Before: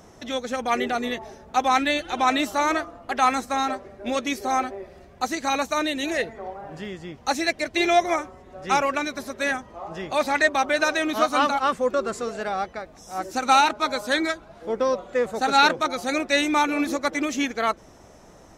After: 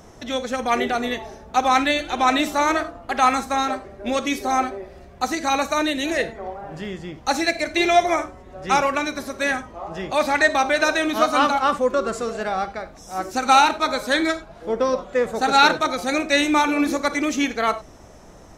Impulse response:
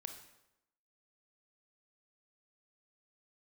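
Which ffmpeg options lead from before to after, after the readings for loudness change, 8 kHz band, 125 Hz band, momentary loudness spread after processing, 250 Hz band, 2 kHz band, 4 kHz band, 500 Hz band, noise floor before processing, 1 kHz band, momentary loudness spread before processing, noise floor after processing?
+2.5 dB, +2.5 dB, +4.5 dB, 12 LU, +3.0 dB, +2.5 dB, +2.5 dB, +2.5 dB, -49 dBFS, +3.0 dB, 13 LU, -45 dBFS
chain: -filter_complex "[0:a]asplit=2[a][b];[b]lowshelf=f=89:g=10[c];[1:a]atrim=start_sample=2205,afade=t=out:st=0.15:d=0.01,atrim=end_sample=7056[d];[c][d]afir=irnorm=-1:irlink=0,volume=6.5dB[e];[a][e]amix=inputs=2:normalize=0,volume=-4.5dB"

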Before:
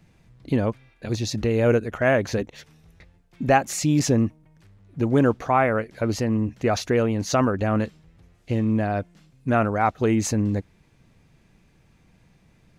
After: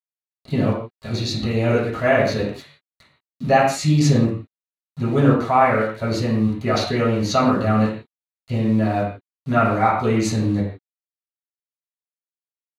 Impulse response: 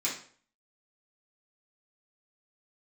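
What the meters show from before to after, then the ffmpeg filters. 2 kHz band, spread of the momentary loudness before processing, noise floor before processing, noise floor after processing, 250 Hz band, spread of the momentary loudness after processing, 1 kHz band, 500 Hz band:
+3.0 dB, 10 LU, -59 dBFS, under -85 dBFS, +3.0 dB, 12 LU, +4.5 dB, +2.5 dB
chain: -filter_complex "[0:a]equalizer=f=4.5k:t=o:w=0.25:g=3,aeval=exprs='val(0)*gte(abs(val(0)),0.00944)':c=same[a];[1:a]atrim=start_sample=2205,atrim=end_sample=4410,asetrate=24696,aresample=44100[b];[a][b]afir=irnorm=-1:irlink=0,volume=-7dB"

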